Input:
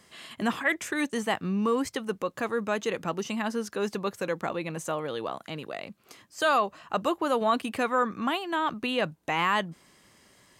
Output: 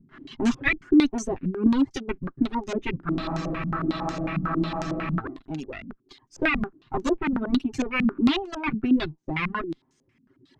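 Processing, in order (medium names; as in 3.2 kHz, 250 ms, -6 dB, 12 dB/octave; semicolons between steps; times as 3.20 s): comb filter that takes the minimum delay 7.6 ms; reverb removal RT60 1.3 s; resonant low shelf 420 Hz +7 dB, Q 3; spectral freeze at 3.10 s, 2.08 s; step-sequenced low-pass 11 Hz 200–6300 Hz; trim -1 dB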